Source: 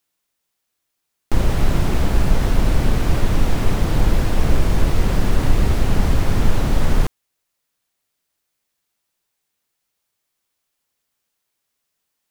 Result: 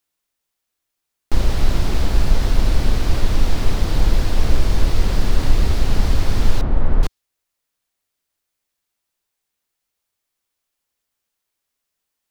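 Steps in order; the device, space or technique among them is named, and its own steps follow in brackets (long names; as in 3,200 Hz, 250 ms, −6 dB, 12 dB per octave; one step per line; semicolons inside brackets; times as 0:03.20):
low shelf boost with a cut just above (low-shelf EQ 70 Hz +5.5 dB; parametric band 150 Hz −4 dB 0.82 octaves)
0:06.61–0:07.03: low-pass filter 1,400 Hz 12 dB per octave
dynamic equaliser 4,500 Hz, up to +7 dB, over −51 dBFS, Q 1.3
level −3 dB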